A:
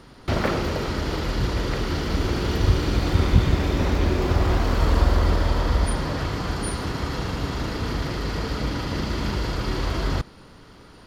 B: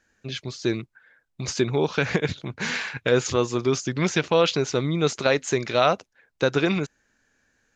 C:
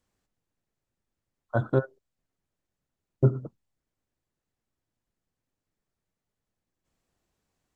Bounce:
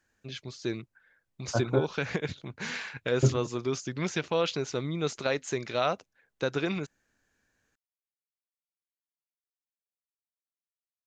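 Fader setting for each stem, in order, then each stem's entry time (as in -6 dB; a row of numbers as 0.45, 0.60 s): off, -8.0 dB, -2.5 dB; off, 0.00 s, 0.00 s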